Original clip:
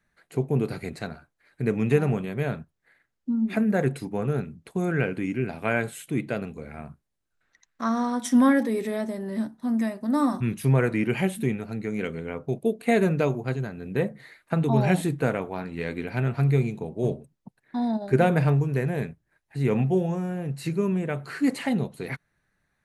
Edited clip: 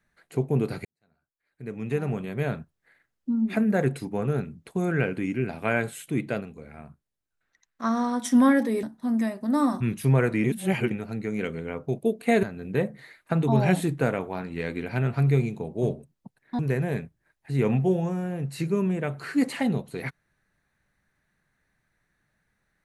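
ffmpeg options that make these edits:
-filter_complex "[0:a]asplit=9[s0][s1][s2][s3][s4][s5][s6][s7][s8];[s0]atrim=end=0.85,asetpts=PTS-STARTPTS,afade=t=out:st=0.846:d=0.004:c=hsin[s9];[s1]atrim=start=0.85:end=6.412,asetpts=PTS-STARTPTS,afade=t=in:d=1.59:c=qua[s10];[s2]atrim=start=6.408:end=7.842,asetpts=PTS-STARTPTS,volume=0.562[s11];[s3]atrim=start=7.838:end=8.832[s12];[s4]atrim=start=9.428:end=11.042[s13];[s5]atrim=start=11.038:end=11.512,asetpts=PTS-STARTPTS,areverse[s14];[s6]atrim=start=11.508:end=13.032[s15];[s7]atrim=start=13.638:end=17.802[s16];[s8]atrim=start=18.648[s17];[s9][s10]concat=n=2:v=0:a=1[s18];[s18][s11]acrossfade=d=0.004:c1=hsin:c2=hsin[s19];[s19][s12]acrossfade=d=0.004:c1=hsin:c2=hsin[s20];[s20][s13]acrossfade=d=0.004:c1=hsin:c2=hsin[s21];[s21][s14]acrossfade=d=0.004:c1=hsin:c2=hsin[s22];[s22][s15]acrossfade=d=0.004:c1=hsin:c2=hsin[s23];[s23][s16]acrossfade=d=0.004:c1=hsin:c2=hsin[s24];[s24][s17]acrossfade=d=0.004:c1=hsin:c2=hsin"

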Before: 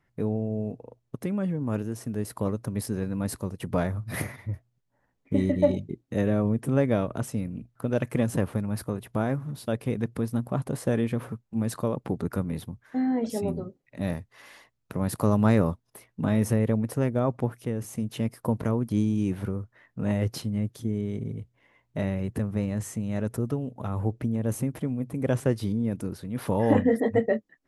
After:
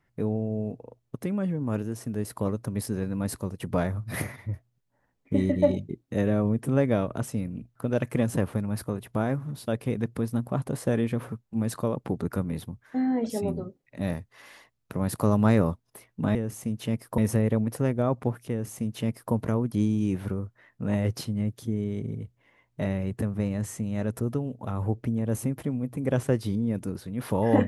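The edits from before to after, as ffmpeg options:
-filter_complex "[0:a]asplit=3[s0][s1][s2];[s0]atrim=end=16.352[s3];[s1]atrim=start=17.668:end=18.502[s4];[s2]atrim=start=16.348[s5];[s3][s4]acrossfade=d=0.004:c1=hsin:c2=hsin[s6];[s6][s5]acrossfade=d=0.004:c1=hsin:c2=hsin"

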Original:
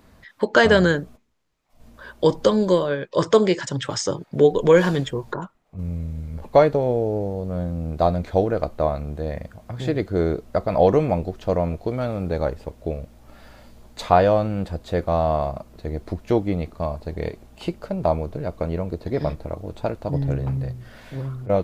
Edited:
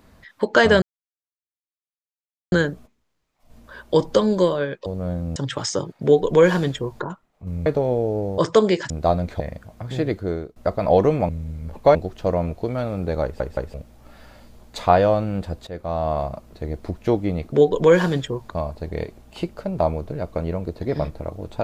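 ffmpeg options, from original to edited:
-filter_complex "[0:a]asplit=17[s0][s1][s2][s3][s4][s5][s6][s7][s8][s9][s10][s11][s12][s13][s14][s15][s16];[s0]atrim=end=0.82,asetpts=PTS-STARTPTS,afade=t=out:st=0.816:d=0.004:c=hsin,apad=pad_dur=1.7[s17];[s1]atrim=start=0.82:end=3.162,asetpts=PTS-STARTPTS,afade=t=in:d=0.004:c=hsin[s18];[s2]atrim=start=7.358:end=7.862[s19];[s3]atrim=start=3.678:end=5.982[s20];[s4]atrim=start=6.638:end=7.362[s21];[s5]atrim=start=3.158:end=3.682[s22];[s6]atrim=start=7.858:end=8.362[s23];[s7]atrim=start=9.288:end=10.45,asetpts=PTS-STARTPTS,afade=t=out:st=0.722:d=0.44:silence=0.0630957[s24];[s8]atrim=start=10.45:end=11.182,asetpts=PTS-STARTPTS,afade=t=in:d=0.004:c=hsin:silence=0.0630957[s25];[s9]atrim=start=5.978:end=6.642[s26];[s10]atrim=start=11.178:end=12.632[s27];[s11]atrim=start=12.458:end=12.632[s28];[s12]atrim=start=12.458:end=12.632[s29];[s13]atrim=start=12.968:end=14.9,asetpts=PTS-STARTPTS,afade=t=out:st=1.928:d=0.004:c=hsin:silence=0.211349[s30];[s14]atrim=start=14.9:end=16.752,asetpts=PTS-STARTPTS,afade=t=in:d=0.56:silence=0.211349[s31];[s15]atrim=start=4.348:end=5.332[s32];[s16]atrim=start=16.748[s33];[s17][s18]concat=n=2:v=0:a=1[s34];[s34][s19]acrossfade=d=0.004:c1=hsin:c2=hsin[s35];[s35][s20]acrossfade=d=0.004:c1=hsin:c2=hsin[s36];[s36][s21]acrossfade=d=0.004:c1=hsin:c2=hsin[s37];[s37][s22]acrossfade=d=0.004:c1=hsin:c2=hsin[s38];[s38][s23]acrossfade=d=0.004:c1=hsin:c2=hsin[s39];[s24][s25]concat=n=2:v=0:a=1[s40];[s39][s40]acrossfade=d=0.004:c1=hsin:c2=hsin[s41];[s41][s26]acrossfade=d=0.004:c1=hsin:c2=hsin[s42];[s42][s27]acrossfade=d=0.004:c1=hsin:c2=hsin[s43];[s43][s28]acrossfade=d=0.004:c1=hsin:c2=hsin[s44];[s44][s29]acrossfade=d=0.004:c1=hsin:c2=hsin[s45];[s30][s31]concat=n=2:v=0:a=1[s46];[s45][s46]acrossfade=d=0.004:c1=hsin:c2=hsin[s47];[s47][s32]acrossfade=d=0.004:c1=hsin:c2=hsin[s48];[s48][s33]acrossfade=d=0.004:c1=hsin:c2=hsin"

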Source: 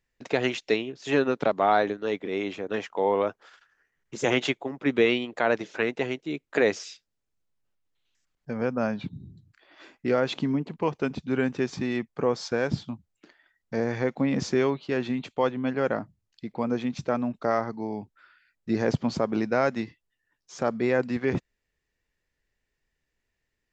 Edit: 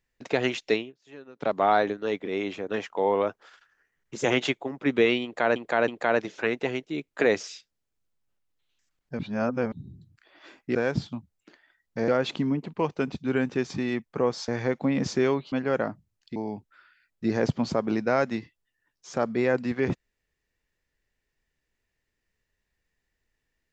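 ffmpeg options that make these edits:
-filter_complex "[0:a]asplit=12[s0][s1][s2][s3][s4][s5][s6][s7][s8][s9][s10][s11];[s0]atrim=end=0.94,asetpts=PTS-STARTPTS,afade=t=out:st=0.76:d=0.18:silence=0.0749894[s12];[s1]atrim=start=0.94:end=1.35,asetpts=PTS-STARTPTS,volume=0.075[s13];[s2]atrim=start=1.35:end=5.562,asetpts=PTS-STARTPTS,afade=t=in:d=0.18:silence=0.0749894[s14];[s3]atrim=start=5.238:end=5.562[s15];[s4]atrim=start=5.238:end=8.552[s16];[s5]atrim=start=8.548:end=9.082,asetpts=PTS-STARTPTS,areverse[s17];[s6]atrim=start=9.078:end=10.112[s18];[s7]atrim=start=12.508:end=13.842[s19];[s8]atrim=start=10.108:end=12.512[s20];[s9]atrim=start=13.838:end=14.882[s21];[s10]atrim=start=15.628:end=16.472[s22];[s11]atrim=start=17.808[s23];[s12][s13][s14]concat=n=3:v=0:a=1[s24];[s24][s15]acrossfade=d=0.004:c1=hsin:c2=hsin[s25];[s25][s16]acrossfade=d=0.004:c1=hsin:c2=hsin[s26];[s26][s17]acrossfade=d=0.004:c1=hsin:c2=hsin[s27];[s27][s18]acrossfade=d=0.004:c1=hsin:c2=hsin[s28];[s28][s19]acrossfade=d=0.004:c1=hsin:c2=hsin[s29];[s29][s20]acrossfade=d=0.004:c1=hsin:c2=hsin[s30];[s30][s21]acrossfade=d=0.004:c1=hsin:c2=hsin[s31];[s31][s22]acrossfade=d=0.004:c1=hsin:c2=hsin[s32];[s32][s23]acrossfade=d=0.004:c1=hsin:c2=hsin"

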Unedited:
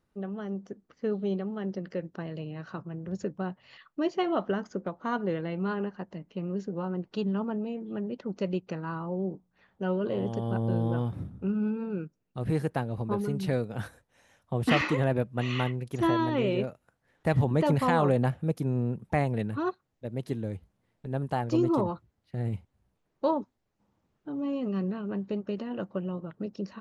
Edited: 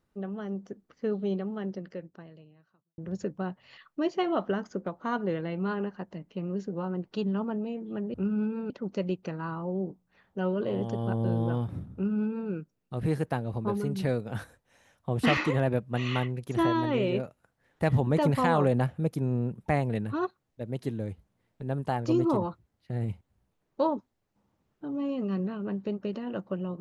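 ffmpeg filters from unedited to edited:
-filter_complex "[0:a]asplit=4[s0][s1][s2][s3];[s0]atrim=end=2.98,asetpts=PTS-STARTPTS,afade=t=out:st=1.59:d=1.39:c=qua[s4];[s1]atrim=start=2.98:end=8.142,asetpts=PTS-STARTPTS,afade=t=in:d=0.004:c=hsin[s5];[s2]atrim=start=11.378:end=11.942[s6];[s3]atrim=start=8.138[s7];[s4][s5]concat=n=2:v=0:a=1[s8];[s8][s6]acrossfade=d=0.004:c1=hsin:c2=hsin[s9];[s9][s7]acrossfade=d=0.004:c1=hsin:c2=hsin"

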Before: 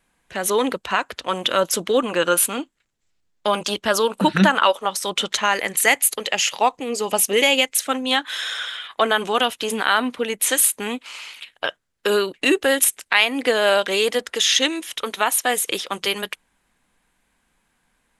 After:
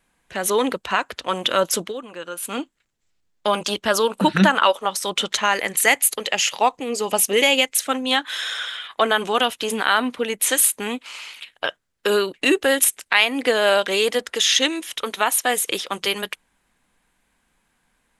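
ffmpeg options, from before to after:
-filter_complex "[0:a]asplit=3[s0][s1][s2];[s0]atrim=end=1.94,asetpts=PTS-STARTPTS,afade=t=out:st=1.81:d=0.13:silence=0.199526[s3];[s1]atrim=start=1.94:end=2.42,asetpts=PTS-STARTPTS,volume=0.2[s4];[s2]atrim=start=2.42,asetpts=PTS-STARTPTS,afade=t=in:d=0.13:silence=0.199526[s5];[s3][s4][s5]concat=n=3:v=0:a=1"

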